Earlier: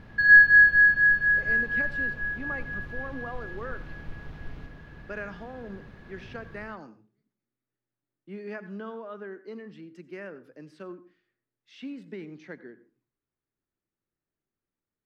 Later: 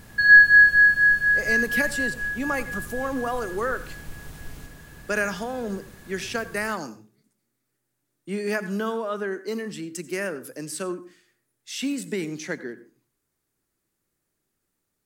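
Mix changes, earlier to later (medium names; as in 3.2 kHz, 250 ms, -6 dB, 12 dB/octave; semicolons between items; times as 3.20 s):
speech +10.0 dB; master: remove distance through air 300 m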